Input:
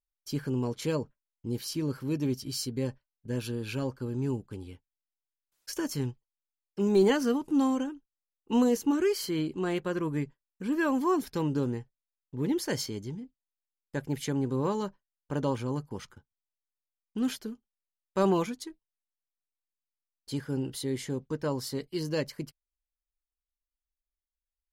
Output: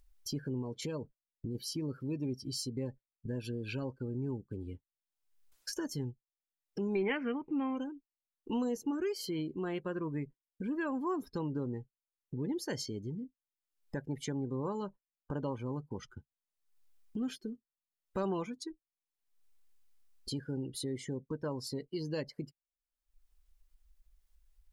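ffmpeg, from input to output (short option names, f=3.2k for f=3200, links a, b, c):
-filter_complex "[0:a]asettb=1/sr,asplit=3[a][b][c];[a]atrim=end=0.624[d];[b]atrim=start=0.62:end=1.55,asetpts=PTS-STARTPTS,afade=t=in:d=0.004:c=qsin,afade=t=out:st=0.926:d=0.004:c=qsin,acompressor=threshold=-32dB:ratio=2:attack=3.2:release=140:knee=1:detection=peak[e];[c]atrim=start=1.546[f];[d][e]acrossfade=d=0.004:c1=hsin:c2=qsin[g];[g][f]acrossfade=d=0.004:c1=qsin:c2=hsin,asettb=1/sr,asplit=3[h][i][j];[h]atrim=end=6.954[k];[i]atrim=start=6.95:end=7.77,asetpts=PTS-STARTPTS,afade=t=in:d=0.004:c=qsin,afade=t=out:st=0.816:d=0.004:c=qsin,lowpass=f=2.3k:t=q:w=6.7[l];[j]atrim=start=7.766[m];[k][l]acrossfade=d=0.004:c1=hsin:c2=qsin[n];[n][m]acrossfade=d=0.004:c1=qsin:c2=hsin,acompressor=mode=upward:threshold=-32dB:ratio=2.5,afftdn=nr=20:nf=-43,acompressor=threshold=-35dB:ratio=2,volume=-1.5dB"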